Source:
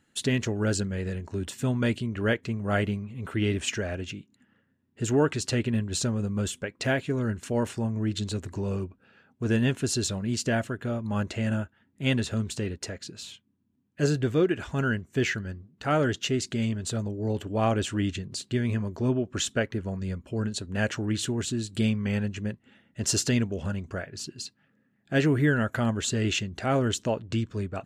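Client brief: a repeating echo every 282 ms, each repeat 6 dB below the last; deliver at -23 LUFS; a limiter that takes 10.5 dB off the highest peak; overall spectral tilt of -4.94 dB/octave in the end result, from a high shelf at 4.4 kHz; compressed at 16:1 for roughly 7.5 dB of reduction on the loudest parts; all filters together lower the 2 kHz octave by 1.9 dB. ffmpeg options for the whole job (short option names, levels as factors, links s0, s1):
-af "equalizer=f=2000:t=o:g=-3.5,highshelf=f=4400:g=4.5,acompressor=threshold=0.0501:ratio=16,alimiter=level_in=1.12:limit=0.0631:level=0:latency=1,volume=0.891,aecho=1:1:282|564|846|1128|1410|1692:0.501|0.251|0.125|0.0626|0.0313|0.0157,volume=3.35"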